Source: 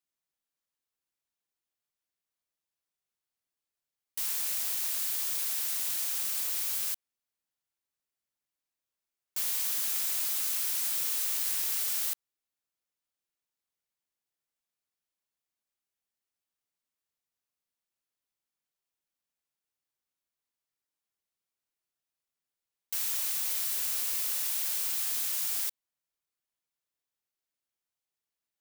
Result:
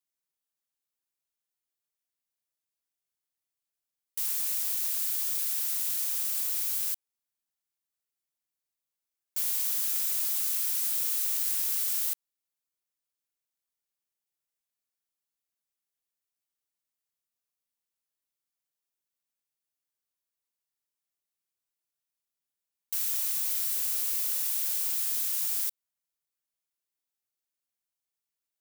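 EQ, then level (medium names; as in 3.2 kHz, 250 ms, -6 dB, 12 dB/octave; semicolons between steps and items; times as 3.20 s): treble shelf 5.6 kHz +7 dB; -4.5 dB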